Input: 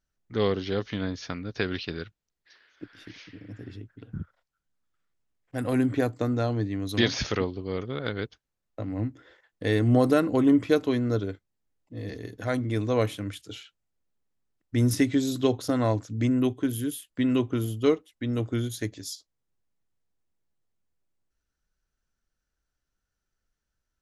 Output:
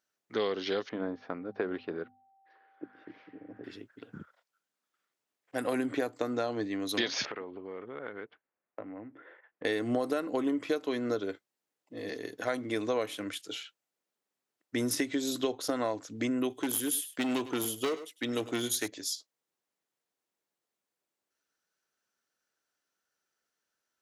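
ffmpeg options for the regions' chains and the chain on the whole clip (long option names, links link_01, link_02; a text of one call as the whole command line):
ffmpeg -i in.wav -filter_complex "[0:a]asettb=1/sr,asplit=3[link_01][link_02][link_03];[link_01]atrim=end=0.894[link_04];[link_02]atrim=start=0.89:end=3.64,asetpts=PTS-STARTPTS,afade=type=in:duration=0.004:curve=qsin,afade=type=out:start_time=2.746:duration=0.004:curve=qsin,lowpass=1000,bandreject=frequency=50:width_type=h:width=6,bandreject=frequency=100:width_type=h:width=6,bandreject=frequency=150:width_type=h:width=6,bandreject=frequency=200:width_type=h:width=6,bandreject=frequency=250:width_type=h:width=6,aeval=exprs='val(0)+0.000501*sin(2*PI*780*n/s)':channel_layout=same[link_05];[link_03]atrim=start=3.636[link_06];[link_04][link_05]acrossfade=duration=0.004:curve1=hsin:curve2=qsin[link_07];[link_07][link_06]acrossfade=duration=0.004:curve1=qsin:curve2=hsin,asettb=1/sr,asplit=3[link_08][link_09][link_10];[link_08]atrim=end=7.254[link_11];[link_09]atrim=start=7.25:end=9.65,asetpts=PTS-STARTPTS,afade=type=in:duration=0.004:curve=qsin,afade=type=out:start_time=2.396:duration=0.004:curve=qsin,lowpass=frequency=2300:width=0.5412,lowpass=frequency=2300:width=1.3066,acompressor=threshold=-36dB:ratio=6:attack=3.2:release=140:knee=1:detection=peak[link_12];[link_10]atrim=start=9.646[link_13];[link_11][link_12]acrossfade=duration=0.004:curve1=hsin:curve2=qsin[link_14];[link_14][link_13]acrossfade=duration=0.004:curve1=qsin:curve2=hsin,asettb=1/sr,asplit=3[link_15][link_16][link_17];[link_15]atrim=end=16.504[link_18];[link_16]atrim=start=16.5:end=18.88,asetpts=PTS-STARTPTS,afade=type=in:duration=0.004:curve=qsin,afade=type=out:start_time=2.376:duration=0.004:curve=qsin,highshelf=frequency=3100:gain=9,asoftclip=type=hard:threshold=-22.5dB,aecho=1:1:102:0.15,atrim=end_sample=104958[link_19];[link_17]atrim=start=18.876[link_20];[link_18][link_19]acrossfade=duration=0.004:curve1=hsin:curve2=qsin[link_21];[link_21][link_20]acrossfade=duration=0.004:curve1=qsin:curve2=hsin,highpass=360,acompressor=threshold=-30dB:ratio=6,volume=3dB" out.wav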